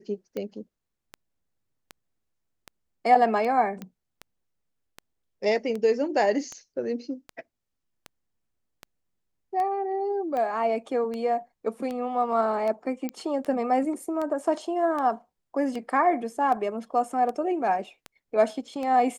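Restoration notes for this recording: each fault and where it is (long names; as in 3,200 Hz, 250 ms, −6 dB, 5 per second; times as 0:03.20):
scratch tick 78 rpm −21 dBFS
0:03.82: click −23 dBFS
0:13.09: click −17 dBFS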